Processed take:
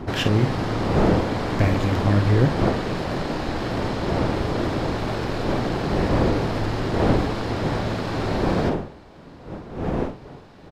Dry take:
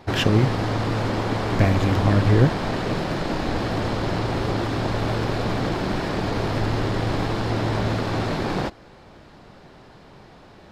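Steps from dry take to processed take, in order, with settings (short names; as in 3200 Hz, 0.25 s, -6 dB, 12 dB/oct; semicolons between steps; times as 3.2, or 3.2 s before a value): wind noise 430 Hz -25 dBFS; doubler 49 ms -9.5 dB; gain -2 dB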